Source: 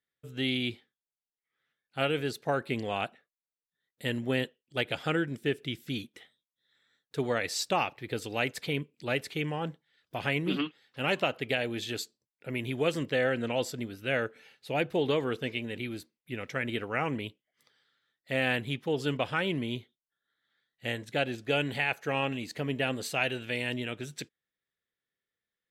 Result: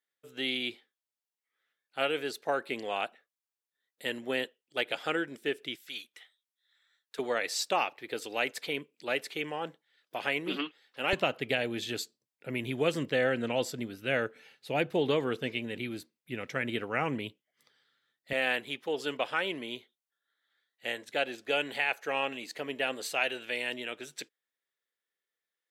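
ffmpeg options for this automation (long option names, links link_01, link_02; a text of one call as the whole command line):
ffmpeg -i in.wav -af "asetnsamples=nb_out_samples=441:pad=0,asendcmd='5.76 highpass f 910;7.19 highpass f 350;11.13 highpass f 120;18.33 highpass f 400',highpass=360" out.wav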